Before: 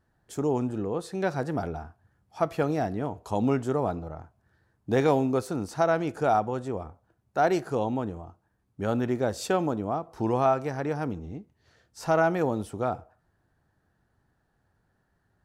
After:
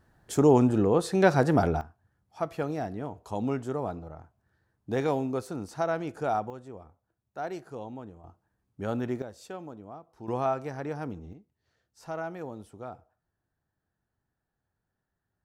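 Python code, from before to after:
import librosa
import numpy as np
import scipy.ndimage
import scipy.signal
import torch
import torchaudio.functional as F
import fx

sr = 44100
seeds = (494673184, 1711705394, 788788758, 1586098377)

y = fx.gain(x, sr, db=fx.steps((0.0, 7.0), (1.81, -5.0), (6.5, -12.0), (8.24, -4.0), (9.22, -15.0), (10.28, -5.0), (11.33, -12.5)))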